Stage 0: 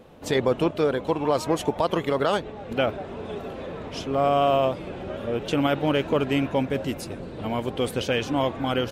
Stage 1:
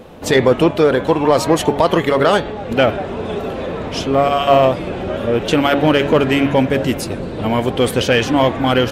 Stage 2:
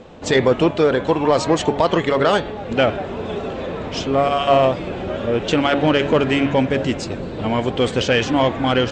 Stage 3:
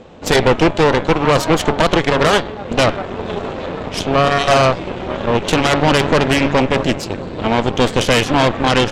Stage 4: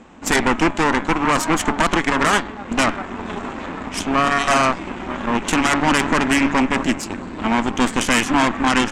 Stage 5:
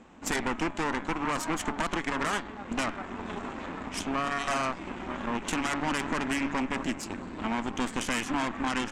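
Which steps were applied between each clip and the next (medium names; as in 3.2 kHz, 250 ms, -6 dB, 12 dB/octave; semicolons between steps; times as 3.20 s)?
de-hum 141.2 Hz, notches 33; dynamic bell 1.8 kHz, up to +4 dB, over -45 dBFS, Q 3.6; in parallel at -3.5 dB: saturation -21.5 dBFS, distortion -10 dB; on the sum: trim +7 dB
elliptic low-pass 7.7 kHz, stop band 40 dB; trim -2 dB
Chebyshev shaper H 6 -10 dB, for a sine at -4 dBFS; trim +1 dB
graphic EQ 125/250/500/1000/2000/4000/8000 Hz -11/+8/-11/+4/+4/-7/+8 dB; trim -3 dB
compression 2:1, threshold -20 dBFS, peak gain reduction 5 dB; trim -8.5 dB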